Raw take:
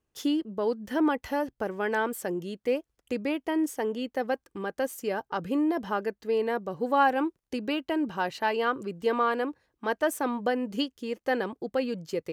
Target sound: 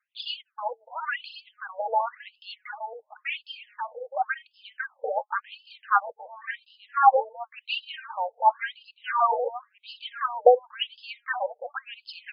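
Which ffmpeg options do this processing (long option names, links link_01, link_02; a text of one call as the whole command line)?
ffmpeg -i in.wav -af "aphaser=in_gain=1:out_gain=1:delay=4.8:decay=0.62:speed=0.67:type=sinusoidal,aecho=1:1:870:0.251,afftfilt=real='re*between(b*sr/1024,610*pow(3700/610,0.5+0.5*sin(2*PI*0.93*pts/sr))/1.41,610*pow(3700/610,0.5+0.5*sin(2*PI*0.93*pts/sr))*1.41)':imag='im*between(b*sr/1024,610*pow(3700/610,0.5+0.5*sin(2*PI*0.93*pts/sr))/1.41,610*pow(3700/610,0.5+0.5*sin(2*PI*0.93*pts/sr))*1.41)':win_size=1024:overlap=0.75,volume=5.5dB" out.wav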